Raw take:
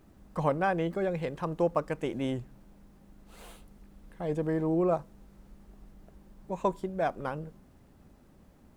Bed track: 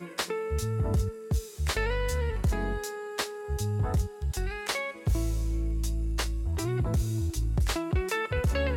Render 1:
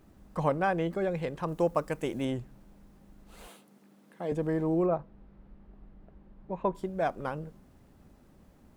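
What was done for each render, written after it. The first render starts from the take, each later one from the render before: 1.48–2.25 s: treble shelf 7.2 kHz +10.5 dB; 3.47–4.32 s: high-pass 180 Hz 24 dB/octave; 4.86–6.75 s: distance through air 360 m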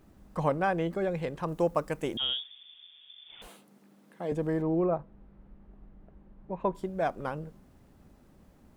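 2.17–3.42 s: frequency inversion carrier 3.5 kHz; 4.62–6.60 s: distance through air 150 m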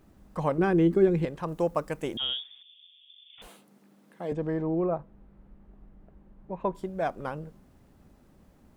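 0.58–1.25 s: resonant low shelf 470 Hz +7 dB, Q 3; 2.62–3.38 s: ladder high-pass 2.6 kHz, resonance 60%; 4.33–4.96 s: distance through air 110 m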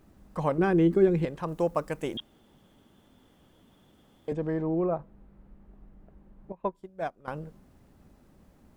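2.20–4.28 s: room tone; 6.52–7.28 s: upward expansion 2.5:1, over -36 dBFS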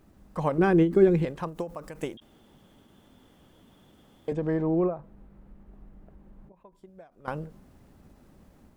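level rider gain up to 3 dB; endings held to a fixed fall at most 160 dB/s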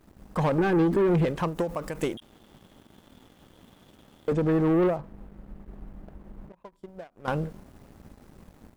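peak limiter -17.5 dBFS, peak gain reduction 9 dB; waveshaping leveller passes 2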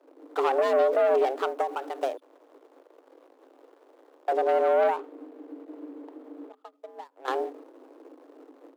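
median filter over 25 samples; frequency shift +260 Hz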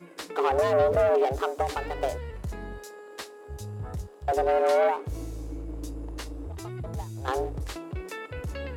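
add bed track -8 dB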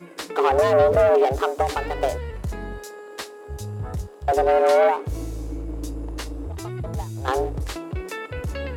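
trim +5.5 dB

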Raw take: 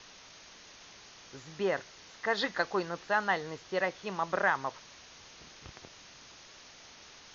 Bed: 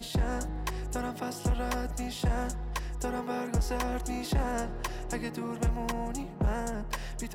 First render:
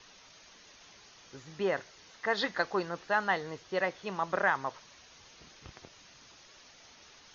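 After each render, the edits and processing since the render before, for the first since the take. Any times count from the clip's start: noise reduction 6 dB, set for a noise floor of -54 dBFS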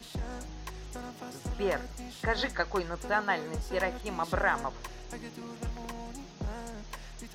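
add bed -8 dB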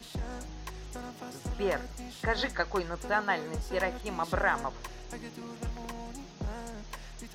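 no audible change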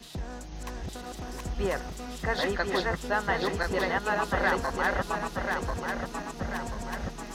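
backward echo that repeats 519 ms, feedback 68%, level -1 dB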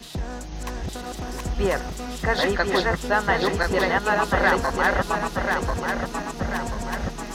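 trim +6.5 dB

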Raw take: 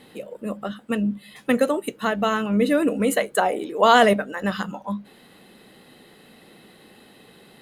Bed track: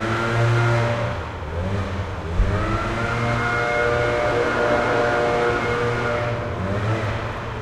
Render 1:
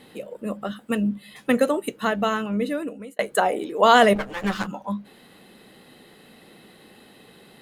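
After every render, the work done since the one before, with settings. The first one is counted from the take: 0.68–1.09 s: treble shelf 9 kHz +7 dB; 2.15–3.19 s: fade out; 4.15–4.67 s: comb filter that takes the minimum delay 9.3 ms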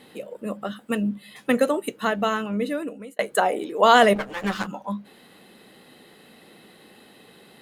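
bass shelf 100 Hz -8 dB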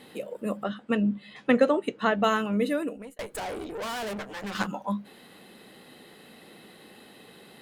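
0.63–2.24 s: distance through air 120 m; 2.96–4.55 s: valve stage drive 32 dB, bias 0.7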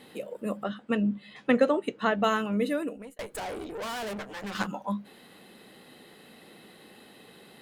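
trim -1.5 dB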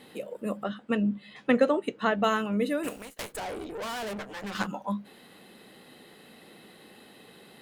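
2.83–3.31 s: spectral contrast reduction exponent 0.53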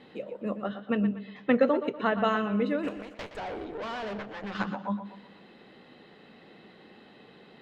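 distance through air 190 m; tape echo 121 ms, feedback 44%, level -10 dB, low-pass 5.2 kHz

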